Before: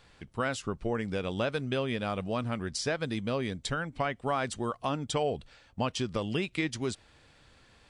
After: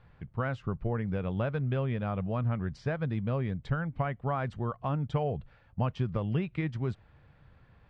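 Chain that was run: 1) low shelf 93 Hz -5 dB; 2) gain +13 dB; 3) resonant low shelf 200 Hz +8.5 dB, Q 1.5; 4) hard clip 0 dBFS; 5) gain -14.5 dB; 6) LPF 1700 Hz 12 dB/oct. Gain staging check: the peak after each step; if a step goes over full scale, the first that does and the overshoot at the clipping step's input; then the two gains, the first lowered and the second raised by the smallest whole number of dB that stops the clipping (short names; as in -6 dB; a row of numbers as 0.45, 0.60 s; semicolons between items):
-17.0, -4.0, -1.5, -1.5, -16.0, -16.5 dBFS; no overload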